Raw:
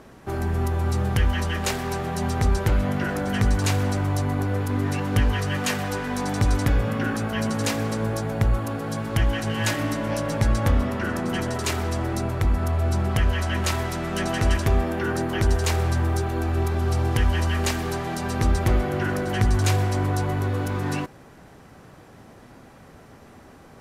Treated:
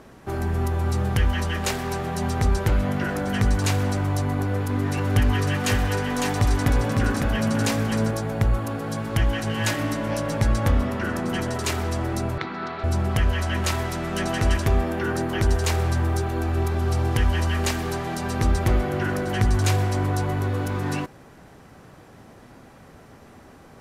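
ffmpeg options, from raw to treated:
-filter_complex "[0:a]asettb=1/sr,asplit=3[a][b][c];[a]atrim=end=4.424[d];[b]atrim=start=4.42:end=8.11,asetpts=PTS-STARTPTS,afade=t=in:d=0.004:c=qsin,afade=t=out:st=3.686:d=0.004:c=qsin,aecho=1:1:554:0.631,atrim=end_sample=162729[e];[c]atrim=start=8.106[f];[d][e]acrossfade=d=0.004:c1=hsin:c2=qsin[g];[g][f]acrossfade=d=0.004:c1=qsin:c2=hsin,asettb=1/sr,asplit=3[h][i][j];[h]atrim=end=12.384[k];[i]atrim=start=12.38:end=12.84,asetpts=PTS-STARTPTS,afade=t=in:d=0.004:c=qsin,afade=t=out:st=0.456:d=0.004:c=qsin,highpass=f=180:w=0.5412,highpass=f=180:w=1.3066,equalizer=f=240:t=q:w=4:g=-5,equalizer=f=570:t=q:w=4:g=-8,equalizer=f=1.4k:t=q:w=4:g=6,equalizer=f=2.1k:t=q:w=4:g=4,equalizer=f=4k:t=q:w=4:g=8,lowpass=f=4.8k:w=0.5412,lowpass=f=4.8k:w=1.3066[l];[j]atrim=start=12.836[m];[k][l]acrossfade=d=0.004:c1=hsin:c2=qsin[n];[n][m]acrossfade=d=0.004:c1=qsin:c2=hsin"

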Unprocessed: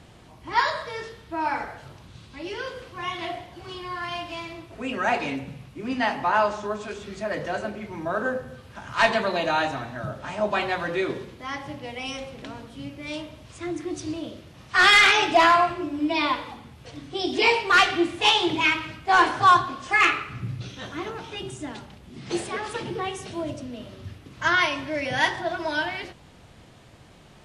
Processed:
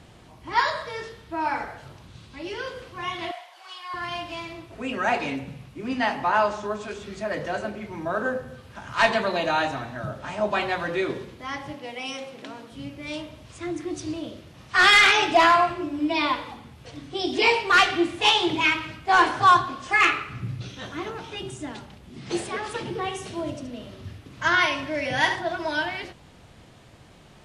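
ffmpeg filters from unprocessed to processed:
-filter_complex "[0:a]asettb=1/sr,asplit=3[a][b][c];[a]atrim=end=3.314[d];[b]atrim=start=3.31:end=3.94,asetpts=PTS-STARTPTS,afade=t=in:d=0.004:c=qsin,afade=t=out:st=0.626:d=0.004:c=qsin,highpass=f=710:w=0.5412,highpass=f=710:w=1.3066[e];[c]atrim=start=3.936[f];[d][e]acrossfade=d=0.004:c1=hsin:c2=qsin[g];[g][f]acrossfade=d=0.004:c1=qsin:c2=hsin,asettb=1/sr,asplit=3[h][i][j];[h]atrim=end=11.734[k];[i]atrim=start=11.73:end=12.72,asetpts=PTS-STARTPTS,afade=t=in:d=0.004:c=qsin,afade=t=out:st=0.986:d=0.004:c=qsin,highpass=210[l];[j]atrim=start=12.716[m];[k][l]acrossfade=d=0.004:c1=hsin:c2=qsin[n];[n][m]acrossfade=d=0.004:c1=qsin:c2=hsin,asettb=1/sr,asplit=3[o][p][q];[o]atrim=end=22.944[r];[p]atrim=start=22.94:end=25.39,asetpts=PTS-STARTPTS,afade=t=in:d=0.004:c=qsin,afade=t=out:st=2.446:d=0.004:c=qsin,aecho=1:1:73:0.335,atrim=end_sample=108045[s];[q]atrim=start=25.386[t];[r][s]acrossfade=d=0.004:c1=hsin:c2=qsin[u];[u][t]acrossfade=d=0.004:c1=qsin:c2=hsin"

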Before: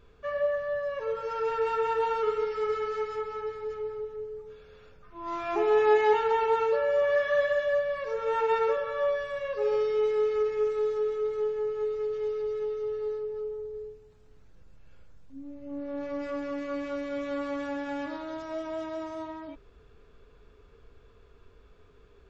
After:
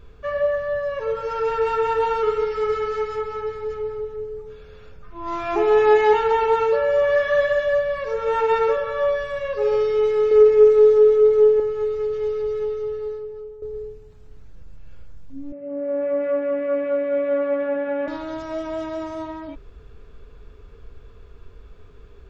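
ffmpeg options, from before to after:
-filter_complex "[0:a]asettb=1/sr,asplit=3[a][b][c];[a]atrim=end=10.314[d];[b]atrim=start=10.31:end=11.6,asetpts=PTS-STARTPTS,afade=t=in:d=0.004:c=qsin,afade=t=out:st=1.286:d=0.004:c=qsin,equalizer=f=440:t=o:w=0.99:g=8.5[e];[c]atrim=start=11.596[f];[d][e]acrossfade=d=0.004:c1=hsin:c2=qsin[g];[g][f]acrossfade=d=0.004:c1=qsin:c2=hsin,asettb=1/sr,asplit=3[h][i][j];[h]atrim=end=15.524[k];[i]atrim=start=15.52:end=18.08,asetpts=PTS-STARTPTS,afade=t=in:d=0.004:c=qsin,afade=t=out:st=2.556:d=0.004:c=qsin,highpass=f=170:w=0.5412,highpass=f=170:w=1.3066,equalizer=f=310:t=q:w=4:g=-5,equalizer=f=600:t=q:w=4:g=10,equalizer=f=960:t=q:w=4:g=-9,lowpass=f=2.4k:w=0.5412,lowpass=f=2.4k:w=1.3066[l];[j]atrim=start=18.076[m];[k][l]acrossfade=d=0.004:c1=hsin:c2=qsin[n];[n][m]acrossfade=d=0.004:c1=qsin:c2=hsin,asplit=2[o][p];[o]atrim=end=13.62,asetpts=PTS-STARTPTS,afade=t=out:st=12.65:d=0.97:silence=0.251189[q];[p]atrim=start=13.62,asetpts=PTS-STARTPTS,afade=t=in:d=0.004:c=hsin:silence=0.251189[r];[q][r]concat=n=2:v=0:a=1,lowshelf=f=130:g=8.5,volume=6dB"

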